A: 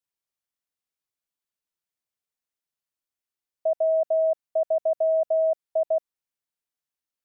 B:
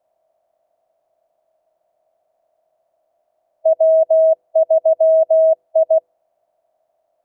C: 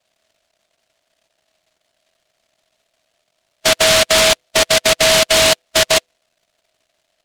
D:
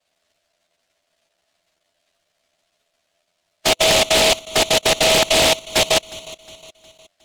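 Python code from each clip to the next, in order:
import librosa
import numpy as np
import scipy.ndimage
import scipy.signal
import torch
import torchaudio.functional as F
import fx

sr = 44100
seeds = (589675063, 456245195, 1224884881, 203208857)

y1 = fx.bin_compress(x, sr, power=0.6)
y1 = fx.peak_eq(y1, sr, hz=680.0, db=11.0, octaves=0.86)
y1 = fx.hum_notches(y1, sr, base_hz=50, count=10)
y1 = F.gain(torch.from_numpy(y1), -1.0).numpy()
y2 = fx.noise_mod_delay(y1, sr, seeds[0], noise_hz=3000.0, depth_ms=0.27)
y3 = fx.env_flanger(y2, sr, rest_ms=11.9, full_db=-14.0)
y3 = fx.echo_feedback(y3, sr, ms=361, feedback_pct=45, wet_db=-19)
y3 = fx.doppler_dist(y3, sr, depth_ms=0.68)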